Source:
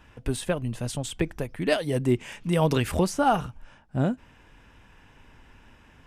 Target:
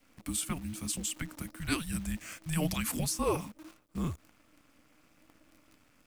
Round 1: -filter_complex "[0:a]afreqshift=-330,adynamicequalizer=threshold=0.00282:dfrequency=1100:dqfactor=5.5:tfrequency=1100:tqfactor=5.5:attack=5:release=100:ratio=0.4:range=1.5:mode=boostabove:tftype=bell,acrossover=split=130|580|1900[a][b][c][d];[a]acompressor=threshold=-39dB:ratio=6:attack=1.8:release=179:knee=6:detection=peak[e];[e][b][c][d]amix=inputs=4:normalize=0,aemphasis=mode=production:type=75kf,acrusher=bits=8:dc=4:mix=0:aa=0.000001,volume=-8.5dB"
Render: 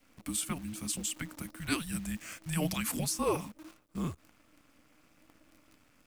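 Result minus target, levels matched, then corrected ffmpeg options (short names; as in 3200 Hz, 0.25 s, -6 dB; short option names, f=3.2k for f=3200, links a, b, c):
compressor: peak gain reduction +9.5 dB
-filter_complex "[0:a]afreqshift=-330,adynamicequalizer=threshold=0.00282:dfrequency=1100:dqfactor=5.5:tfrequency=1100:tqfactor=5.5:attack=5:release=100:ratio=0.4:range=1.5:mode=boostabove:tftype=bell,acrossover=split=130|580|1900[a][b][c][d];[a]acompressor=threshold=-27.5dB:ratio=6:attack=1.8:release=179:knee=6:detection=peak[e];[e][b][c][d]amix=inputs=4:normalize=0,aemphasis=mode=production:type=75kf,acrusher=bits=8:dc=4:mix=0:aa=0.000001,volume=-8.5dB"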